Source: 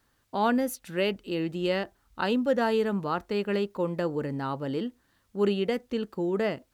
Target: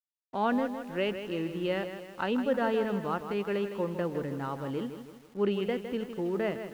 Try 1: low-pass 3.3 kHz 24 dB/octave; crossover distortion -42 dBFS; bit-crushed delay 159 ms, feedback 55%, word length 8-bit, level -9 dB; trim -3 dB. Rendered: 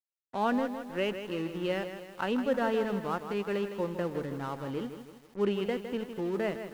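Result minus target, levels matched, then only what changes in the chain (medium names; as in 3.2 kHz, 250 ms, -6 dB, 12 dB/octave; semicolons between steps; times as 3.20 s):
crossover distortion: distortion +9 dB
change: crossover distortion -52 dBFS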